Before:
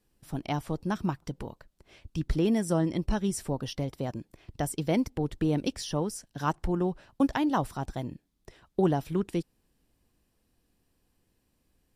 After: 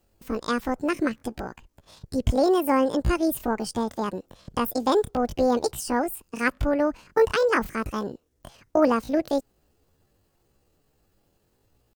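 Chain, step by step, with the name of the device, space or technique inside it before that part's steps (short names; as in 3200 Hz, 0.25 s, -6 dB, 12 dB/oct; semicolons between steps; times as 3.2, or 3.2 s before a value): chipmunk voice (pitch shift +8.5 st); gain +5 dB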